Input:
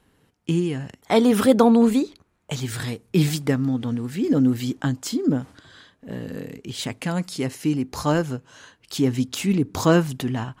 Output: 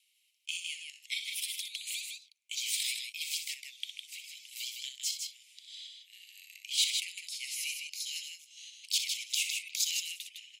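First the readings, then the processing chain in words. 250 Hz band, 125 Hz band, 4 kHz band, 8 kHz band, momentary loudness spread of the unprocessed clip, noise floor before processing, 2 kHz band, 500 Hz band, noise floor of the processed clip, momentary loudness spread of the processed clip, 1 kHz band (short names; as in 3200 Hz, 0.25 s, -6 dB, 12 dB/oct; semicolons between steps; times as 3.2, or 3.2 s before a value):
under -40 dB, under -40 dB, +1.5 dB, +1.5 dB, 16 LU, -66 dBFS, -6.5 dB, under -40 dB, -72 dBFS, 17 LU, under -40 dB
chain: steep high-pass 2200 Hz 96 dB/oct; in parallel at +2.5 dB: level quantiser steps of 11 dB; on the sum: random-step tremolo; rotary speaker horn 1 Hz; loudspeakers at several distances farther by 21 m -9 dB, 54 m -5 dB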